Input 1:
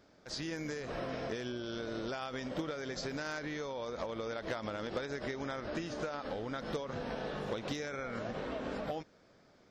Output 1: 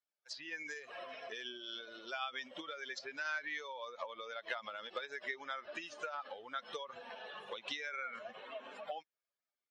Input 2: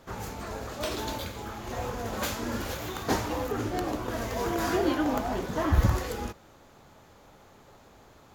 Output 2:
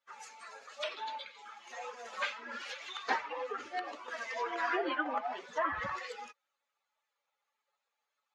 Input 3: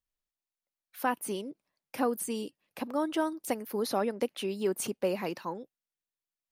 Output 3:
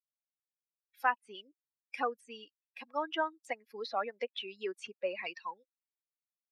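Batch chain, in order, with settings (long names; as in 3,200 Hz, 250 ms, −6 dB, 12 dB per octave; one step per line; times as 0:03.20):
spectral dynamics exaggerated over time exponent 2
meter weighting curve ITU-R 468
treble cut that deepens with the level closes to 2,100 Hz, closed at −32.5 dBFS
bass and treble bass −11 dB, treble −12 dB
level +3.5 dB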